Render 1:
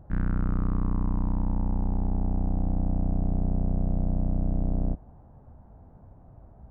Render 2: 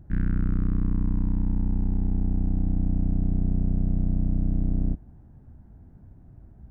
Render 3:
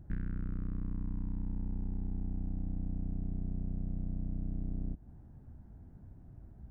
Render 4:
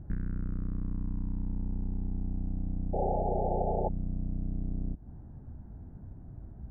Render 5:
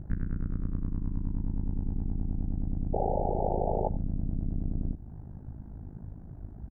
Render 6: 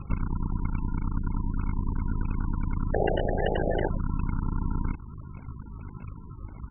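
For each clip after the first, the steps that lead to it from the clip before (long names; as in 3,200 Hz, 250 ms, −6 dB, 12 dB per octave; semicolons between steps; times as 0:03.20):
flat-topped bell 760 Hz −11.5 dB; level +2 dB
downward compressor 6 to 1, threshold −28 dBFS, peak gain reduction 9.5 dB; level −3.5 dB
downward compressor 1.5 to 1, threshold −40 dBFS, peak gain reduction 4.5 dB; sound drawn into the spectrogram noise, 0:02.93–0:03.89, 350–880 Hz −38 dBFS; low-pass filter 1,600 Hz 12 dB per octave; level +6.5 dB
in parallel at +1.5 dB: brickwall limiter −25.5 dBFS, peak gain reduction 8 dB; on the sum: amplitude modulation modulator 52 Hz, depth 75%; single-tap delay 90 ms −19.5 dB
decimation without filtering 37×; level +3 dB; MP3 8 kbit/s 24,000 Hz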